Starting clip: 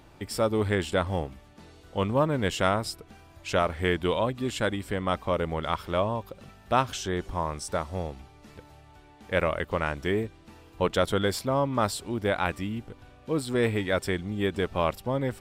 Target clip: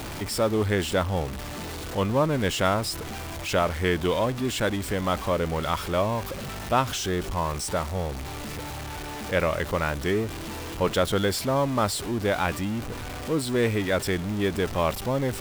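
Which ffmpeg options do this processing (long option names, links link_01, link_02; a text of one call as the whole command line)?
ffmpeg -i in.wav -af "aeval=exprs='val(0)+0.5*0.0316*sgn(val(0))':channel_layout=same" out.wav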